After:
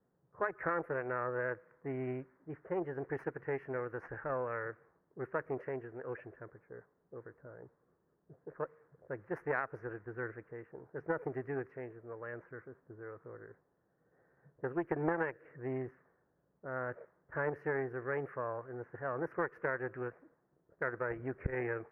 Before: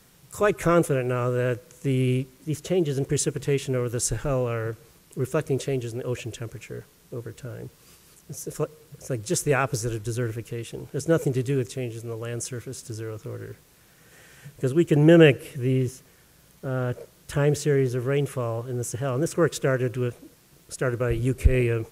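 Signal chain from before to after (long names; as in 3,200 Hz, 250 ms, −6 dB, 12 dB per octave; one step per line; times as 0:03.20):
harmonic generator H 2 −12 dB, 3 −14 dB, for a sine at −4.5 dBFS
elliptic low-pass filter 1,800 Hz, stop band 50 dB
spectral tilt +4.5 dB per octave
downward compressor 16 to 1, threshold −31 dBFS, peak gain reduction 17.5 dB
low-pass that shuts in the quiet parts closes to 440 Hz, open at −36.5 dBFS
level +1.5 dB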